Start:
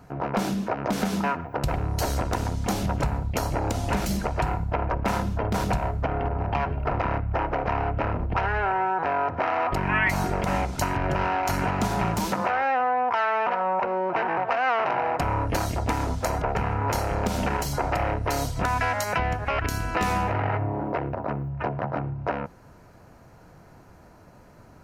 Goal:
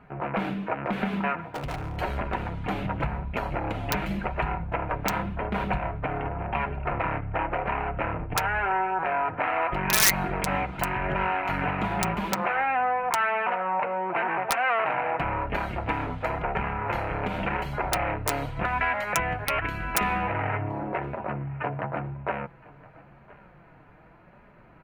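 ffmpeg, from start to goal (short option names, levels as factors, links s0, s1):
-filter_complex "[0:a]firequalizer=gain_entry='entry(310,0);entry(2400,6);entry(5500,-27)':delay=0.05:min_phase=1,asplit=2[s0][s1];[s1]aecho=0:1:1017|2034:0.0794|0.0175[s2];[s0][s2]amix=inputs=2:normalize=0,aeval=exprs='(mod(3.55*val(0)+1,2)-1)/3.55':c=same,flanger=delay=4.8:depth=2.1:regen=-33:speed=0.9:shape=triangular,asettb=1/sr,asplit=3[s3][s4][s5];[s3]atrim=end=1.494[s6];[s4]atrim=start=1.49:end=1.97,asetpts=PTS-STARTPTS,afade=t=in:d=0.004:c=qsin,afade=t=out:st=0.476:d=0.004:c=qsin,volume=28.2,asoftclip=hard,volume=0.0355[s7];[s5]atrim=start=1.966[s8];[s6][s7]acrossfade=d=0.004:c1=hsin:c2=qsin[s9];[s9][s8]acrossfade=d=0.004:c1=qsin:c2=hsin,crystalizer=i=1.5:c=0"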